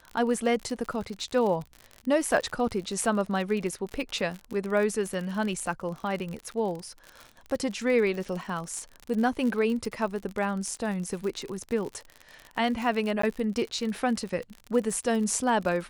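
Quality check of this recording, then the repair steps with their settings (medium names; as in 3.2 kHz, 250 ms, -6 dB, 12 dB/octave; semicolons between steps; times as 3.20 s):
crackle 55 per s -32 dBFS
13.22–13.23 s: dropout 14 ms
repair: de-click; interpolate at 13.22 s, 14 ms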